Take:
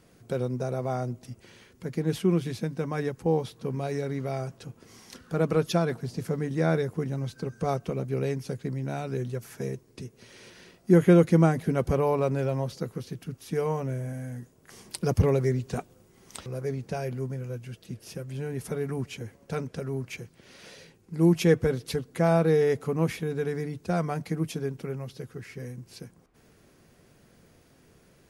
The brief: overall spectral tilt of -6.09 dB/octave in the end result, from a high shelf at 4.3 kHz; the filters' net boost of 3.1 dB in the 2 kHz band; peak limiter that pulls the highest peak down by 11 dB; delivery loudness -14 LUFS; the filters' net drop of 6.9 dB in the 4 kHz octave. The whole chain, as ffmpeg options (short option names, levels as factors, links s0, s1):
-af "equalizer=f=2000:t=o:g=7,equalizer=f=4000:t=o:g=-7.5,highshelf=f=4300:g=-7,volume=7.08,alimiter=limit=0.944:level=0:latency=1"